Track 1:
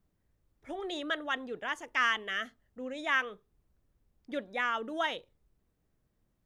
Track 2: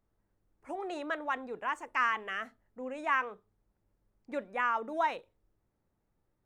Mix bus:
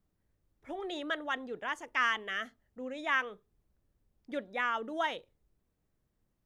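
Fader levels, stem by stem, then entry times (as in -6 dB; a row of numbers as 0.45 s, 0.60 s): -3.0 dB, -13.0 dB; 0.00 s, 0.00 s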